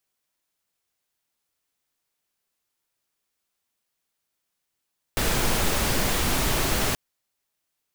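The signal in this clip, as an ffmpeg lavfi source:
ffmpeg -f lavfi -i "anoisesrc=color=pink:amplitude=0.363:duration=1.78:sample_rate=44100:seed=1" out.wav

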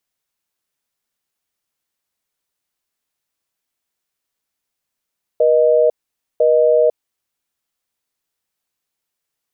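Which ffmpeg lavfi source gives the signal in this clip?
ffmpeg -f lavfi -i "aevalsrc='0.237*(sin(2*PI*480*t)+sin(2*PI*620*t))*clip(min(mod(t,1),0.5-mod(t,1))/0.005,0,1)':duration=1.51:sample_rate=44100" out.wav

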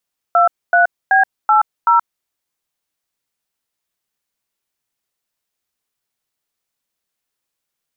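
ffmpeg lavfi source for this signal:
ffmpeg -f lavfi -i "aevalsrc='0.282*clip(min(mod(t,0.38),0.126-mod(t,0.38))/0.002,0,1)*(eq(floor(t/0.38),0)*(sin(2*PI*697*mod(t,0.38))+sin(2*PI*1336*mod(t,0.38)))+eq(floor(t/0.38),1)*(sin(2*PI*697*mod(t,0.38))+sin(2*PI*1477*mod(t,0.38)))+eq(floor(t/0.38),2)*(sin(2*PI*770*mod(t,0.38))+sin(2*PI*1633*mod(t,0.38)))+eq(floor(t/0.38),3)*(sin(2*PI*852*mod(t,0.38))+sin(2*PI*1336*mod(t,0.38)))+eq(floor(t/0.38),4)*(sin(2*PI*941*mod(t,0.38))+sin(2*PI*1336*mod(t,0.38))))':duration=1.9:sample_rate=44100" out.wav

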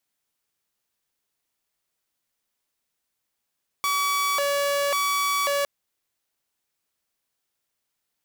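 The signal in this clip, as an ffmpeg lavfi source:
ffmpeg -f lavfi -i "aevalsrc='0.112*(2*mod((854*t+286/0.92*(0.5-abs(mod(0.92*t,1)-0.5))),1)-1)':duration=1.81:sample_rate=44100" out.wav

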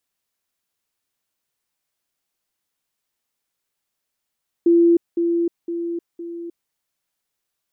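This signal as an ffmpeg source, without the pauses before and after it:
ffmpeg -f lavfi -i "aevalsrc='pow(10,(-10.5-6*floor(t/0.51))/20)*sin(2*PI*340*t)*clip(min(mod(t,0.51),0.31-mod(t,0.51))/0.005,0,1)':duration=2.04:sample_rate=44100" out.wav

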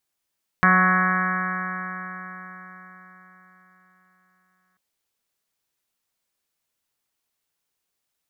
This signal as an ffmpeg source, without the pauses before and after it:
ffmpeg -f lavfi -i "aevalsrc='0.106*pow(10,-3*t/4.47)*sin(2*PI*183.04*t)+0.0211*pow(10,-3*t/4.47)*sin(2*PI*366.35*t)+0.0188*pow(10,-3*t/4.47)*sin(2*PI*550.18*t)+0.0473*pow(10,-3*t/4.47)*sin(2*PI*734.81*t)+0.0188*pow(10,-3*t/4.47)*sin(2*PI*920.47*t)+0.119*pow(10,-3*t/4.47)*sin(2*PI*1107.45*t)+0.0891*pow(10,-3*t/4.47)*sin(2*PI*1295.98*t)+0.075*pow(10,-3*t/4.47)*sin(2*PI*1486.32*t)+0.126*pow(10,-3*t/4.47)*sin(2*PI*1678.71*t)+0.0531*pow(10,-3*t/4.47)*sin(2*PI*1873.41*t)+0.0237*pow(10,-3*t/4.47)*sin(2*PI*2070.63*t)+0.0224*pow(10,-3*t/4.47)*sin(2*PI*2270.63*t)':duration=4.14:sample_rate=44100" out.wav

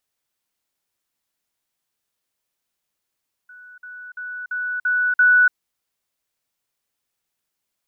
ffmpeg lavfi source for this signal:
ffmpeg -f lavfi -i "aevalsrc='pow(10,(-40.5+6*floor(t/0.34))/20)*sin(2*PI*1480*t)*clip(min(mod(t,0.34),0.29-mod(t,0.34))/0.005,0,1)':duration=2.04:sample_rate=44100" out.wav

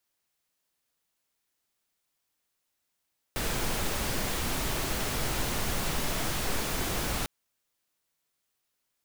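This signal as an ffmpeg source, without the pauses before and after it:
ffmpeg -f lavfi -i "anoisesrc=color=pink:amplitude=0.162:duration=3.9:sample_rate=44100:seed=1" out.wav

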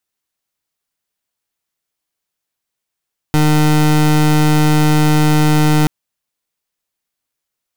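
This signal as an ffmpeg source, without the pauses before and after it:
ffmpeg -f lavfi -i "aevalsrc='0.282*(2*lt(mod(152*t,1),0.27)-1)':duration=2.53:sample_rate=44100" out.wav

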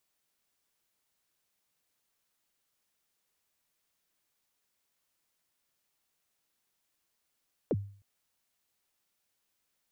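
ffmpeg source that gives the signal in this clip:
ffmpeg -f lavfi -i "aevalsrc='0.0708*pow(10,-3*t/0.47)*sin(2*PI*(580*0.041/log(100/580)*(exp(log(100/580)*min(t,0.041)/0.041)-1)+100*max(t-0.041,0)))':duration=0.31:sample_rate=44100" out.wav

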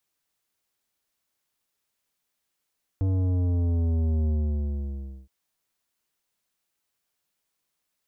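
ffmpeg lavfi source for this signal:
ffmpeg -f lavfi -i "aevalsrc='0.075*clip((2.27-t)/1,0,1)*tanh(3.76*sin(2*PI*96*2.27/log(65/96)*(exp(log(65/96)*t/2.27)-1)))/tanh(3.76)':duration=2.27:sample_rate=44100" out.wav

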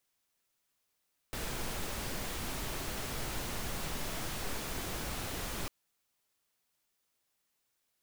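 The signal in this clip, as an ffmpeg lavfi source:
ffmpeg -f lavfi -i "anoisesrc=color=pink:amplitude=0.0684:duration=4.35:sample_rate=44100:seed=1" out.wav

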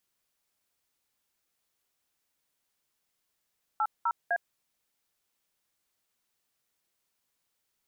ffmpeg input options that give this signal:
ffmpeg -f lavfi -i "aevalsrc='0.0447*clip(min(mod(t,0.253),0.057-mod(t,0.253))/0.002,0,1)*(eq(floor(t/0.253),0)*(sin(2*PI*852*mod(t,0.253))+sin(2*PI*1336*mod(t,0.253)))+eq(floor(t/0.253),1)*(sin(2*PI*941*mod(t,0.253))+sin(2*PI*1336*mod(t,0.253)))+eq(floor(t/0.253),2)*(sin(2*PI*697*mod(t,0.253))+sin(2*PI*1633*mod(t,0.253))))':duration=0.759:sample_rate=44100" out.wav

